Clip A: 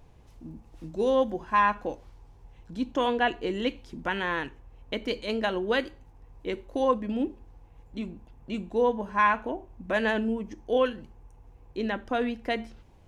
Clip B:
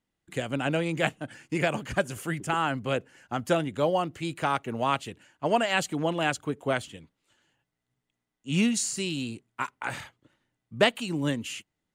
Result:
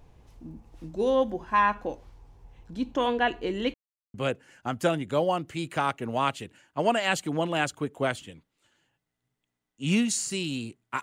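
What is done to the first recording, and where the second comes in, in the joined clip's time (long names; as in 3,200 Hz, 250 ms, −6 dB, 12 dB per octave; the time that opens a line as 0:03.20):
clip A
0:03.74–0:04.14: silence
0:04.14: continue with clip B from 0:02.80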